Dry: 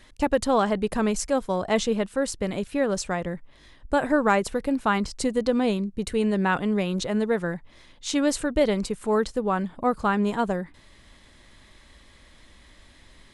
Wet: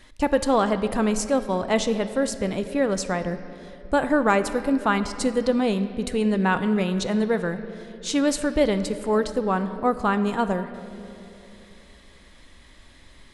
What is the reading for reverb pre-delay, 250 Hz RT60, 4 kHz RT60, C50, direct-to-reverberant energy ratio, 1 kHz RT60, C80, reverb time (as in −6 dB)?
3 ms, 3.3 s, 1.8 s, 11.5 dB, 10.0 dB, 2.4 s, 12.0 dB, 2.9 s